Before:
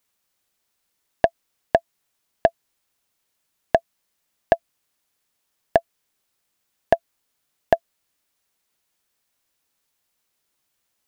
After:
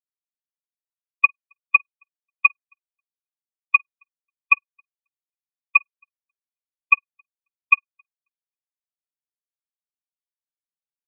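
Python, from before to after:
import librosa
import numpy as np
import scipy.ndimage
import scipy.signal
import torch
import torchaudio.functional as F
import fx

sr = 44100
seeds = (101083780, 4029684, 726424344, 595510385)

p1 = x + fx.echo_feedback(x, sr, ms=270, feedback_pct=30, wet_db=-16, dry=0)
p2 = p1 * np.sin(2.0 * np.pi * 1800.0 * np.arange(len(p1)) / sr)
p3 = fx.peak_eq(p2, sr, hz=940.0, db=-4.0, octaves=0.57)
p4 = fx.room_flutter(p3, sr, wall_m=8.8, rt60_s=0.39)
p5 = fx.transient(p4, sr, attack_db=10, sustain_db=-9)
p6 = fx.spec_gate(p5, sr, threshold_db=-20, keep='strong')
p7 = fx.tilt_eq(p6, sr, slope=2.0)
p8 = fx.spectral_expand(p7, sr, expansion=2.5)
y = p8 * 10.0 ** (-9.0 / 20.0)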